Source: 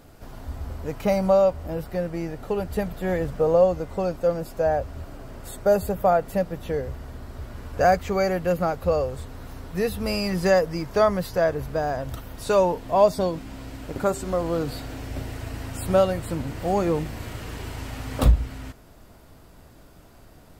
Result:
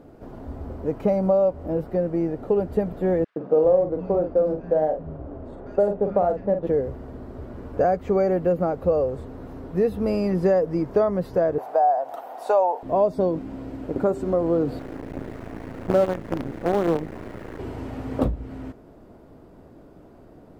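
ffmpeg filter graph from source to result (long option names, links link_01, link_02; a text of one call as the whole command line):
ffmpeg -i in.wav -filter_complex "[0:a]asettb=1/sr,asplit=3[link_01][link_02][link_03];[link_01]atrim=end=3.244[link_04];[link_02]atrim=start=3.24:end=6.67,asetpts=PTS-STARTPTS,afade=type=in:duration=0.004:curve=qsin,afade=type=out:start_time=3.426:duration=0.004:curve=qsin,acrossover=split=170|2000[link_05][link_06][link_07];[link_06]adelay=120[link_08];[link_05]adelay=400[link_09];[link_09][link_08][link_07]amix=inputs=3:normalize=0,atrim=end_sample=151263,adynamicsmooth=sensitivity=7.5:basefreq=1800,asplit=2[link_10][link_11];[link_11]adelay=45,volume=-7.5dB[link_12];[link_10][link_12]amix=inputs=2:normalize=0,atrim=end_sample=151263[link_13];[link_03]atrim=start=6.666[link_14];[link_04][link_13]acrossfade=duration=0.004:curve1=hsin:curve2=qsin[link_15];[link_15][link_14]acrossfade=duration=0.004:curve1=qsin:curve2=hsin,asettb=1/sr,asplit=3[link_16][link_17][link_18];[link_16]atrim=end=11.584[link_19];[link_17]atrim=start=11.58:end=12.83,asetpts=PTS-STARTPTS,afade=type=in:duration=0.004:curve=qsin,afade=type=out:start_time=1.246:duration=0.004:curve=qsin,highpass=frequency=750:width_type=q:width=7.5,highshelf=frequency=10000:gain=7.5[link_20];[link_18]atrim=start=12.826[link_21];[link_19][link_20]acrossfade=duration=0.004:curve1=hsin:curve2=qsin[link_22];[link_22][link_21]acrossfade=duration=0.004:curve1=qsin:curve2=hsin,asettb=1/sr,asplit=3[link_23][link_24][link_25];[link_23]atrim=end=14.794[link_26];[link_24]atrim=start=14.79:end=17.59,asetpts=PTS-STARTPTS,afade=type=in:duration=0.004:curve=qsin,afade=type=out:start_time=2.796:duration=0.004:curve=qsin,lowpass=frequency=2000:width_type=q:width=2.1,acrusher=bits=4:dc=4:mix=0:aa=0.000001[link_27];[link_25]atrim=start=17.586[link_28];[link_26][link_27]acrossfade=duration=0.004:curve1=hsin:curve2=qsin[link_29];[link_29][link_28]acrossfade=duration=0.004:curve1=qsin:curve2=hsin,highshelf=frequency=3000:gain=-11,acompressor=threshold=-23dB:ratio=2.5,equalizer=frequency=350:width=0.48:gain=13.5,volume=-5.5dB" out.wav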